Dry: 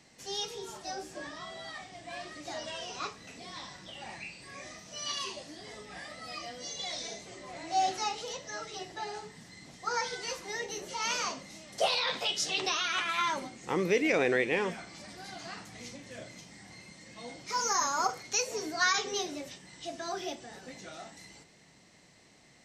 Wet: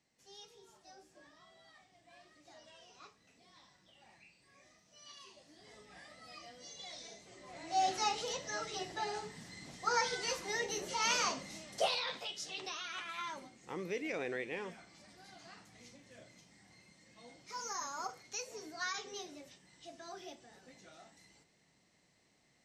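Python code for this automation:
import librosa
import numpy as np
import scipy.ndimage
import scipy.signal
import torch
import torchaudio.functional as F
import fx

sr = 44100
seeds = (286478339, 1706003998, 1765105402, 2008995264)

y = fx.gain(x, sr, db=fx.line((5.23, -19.0), (5.74, -11.0), (7.2, -11.0), (8.1, 0.0), (11.57, 0.0), (12.32, -12.0)))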